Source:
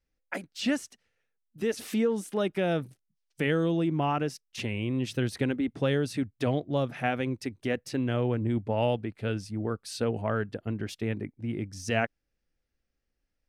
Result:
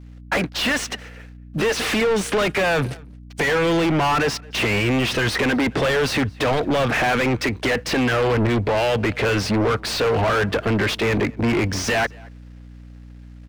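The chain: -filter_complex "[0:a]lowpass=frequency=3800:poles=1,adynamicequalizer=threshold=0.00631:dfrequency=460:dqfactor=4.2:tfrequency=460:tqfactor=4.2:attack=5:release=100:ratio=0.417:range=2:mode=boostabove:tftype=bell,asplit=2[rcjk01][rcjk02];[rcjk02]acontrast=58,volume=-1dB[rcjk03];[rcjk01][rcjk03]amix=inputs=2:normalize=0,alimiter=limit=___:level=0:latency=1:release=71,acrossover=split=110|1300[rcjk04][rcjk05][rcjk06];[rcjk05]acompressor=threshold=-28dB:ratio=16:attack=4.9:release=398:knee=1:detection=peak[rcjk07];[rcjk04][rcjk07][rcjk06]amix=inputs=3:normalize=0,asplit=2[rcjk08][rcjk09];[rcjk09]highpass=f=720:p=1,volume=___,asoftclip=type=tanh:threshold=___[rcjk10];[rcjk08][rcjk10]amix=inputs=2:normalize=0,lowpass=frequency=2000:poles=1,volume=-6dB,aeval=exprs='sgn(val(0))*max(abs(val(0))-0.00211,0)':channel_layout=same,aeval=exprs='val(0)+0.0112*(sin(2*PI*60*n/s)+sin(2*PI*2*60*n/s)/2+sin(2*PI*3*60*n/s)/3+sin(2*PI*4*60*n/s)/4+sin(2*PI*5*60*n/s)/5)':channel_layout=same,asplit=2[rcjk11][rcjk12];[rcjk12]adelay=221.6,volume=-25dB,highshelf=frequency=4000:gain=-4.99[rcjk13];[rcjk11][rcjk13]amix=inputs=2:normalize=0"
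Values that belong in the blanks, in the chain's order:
-12dB, 38dB, -11dB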